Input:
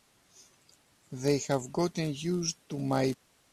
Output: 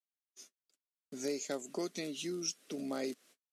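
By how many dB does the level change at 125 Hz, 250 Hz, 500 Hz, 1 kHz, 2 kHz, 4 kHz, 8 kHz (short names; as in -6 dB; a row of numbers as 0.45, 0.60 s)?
-20.0, -8.0, -8.0, -12.5, -6.5, -4.0, -3.5 dB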